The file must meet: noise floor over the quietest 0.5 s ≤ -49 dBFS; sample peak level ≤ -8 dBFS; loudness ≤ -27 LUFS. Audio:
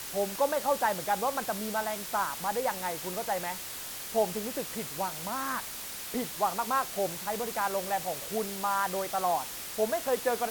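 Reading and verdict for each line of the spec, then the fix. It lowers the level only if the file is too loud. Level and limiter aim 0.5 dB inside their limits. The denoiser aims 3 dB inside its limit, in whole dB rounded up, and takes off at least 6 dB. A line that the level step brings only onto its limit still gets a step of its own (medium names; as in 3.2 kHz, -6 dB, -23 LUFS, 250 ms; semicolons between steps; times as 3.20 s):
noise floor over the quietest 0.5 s -40 dBFS: fail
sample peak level -15.0 dBFS: pass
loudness -31.0 LUFS: pass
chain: noise reduction 12 dB, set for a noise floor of -40 dBFS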